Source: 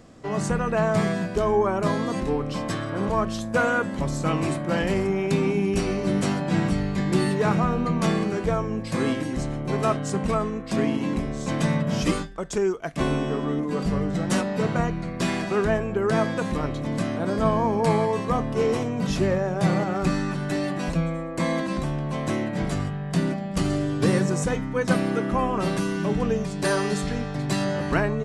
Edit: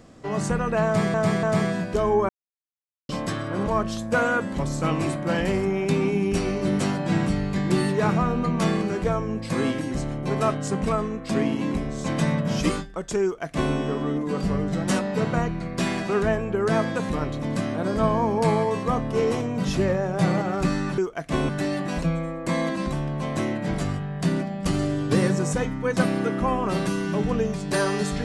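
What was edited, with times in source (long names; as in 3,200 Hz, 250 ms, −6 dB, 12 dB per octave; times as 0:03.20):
0:00.85–0:01.14: repeat, 3 plays
0:01.71–0:02.51: silence
0:12.65–0:13.16: duplicate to 0:20.40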